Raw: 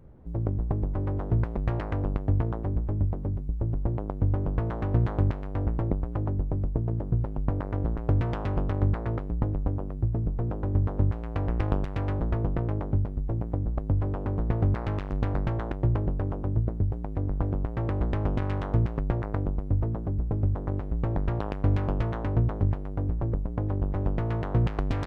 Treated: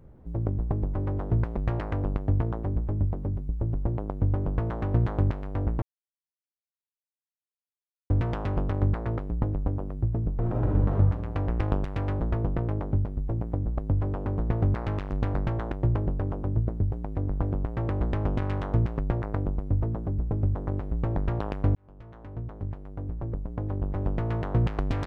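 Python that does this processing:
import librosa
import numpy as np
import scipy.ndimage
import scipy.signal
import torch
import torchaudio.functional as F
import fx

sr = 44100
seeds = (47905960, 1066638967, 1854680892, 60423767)

y = fx.reverb_throw(x, sr, start_s=10.36, length_s=0.56, rt60_s=1.3, drr_db=-2.0)
y = fx.edit(y, sr, fx.silence(start_s=5.82, length_s=2.28),
    fx.fade_in_span(start_s=21.75, length_s=2.56), tone=tone)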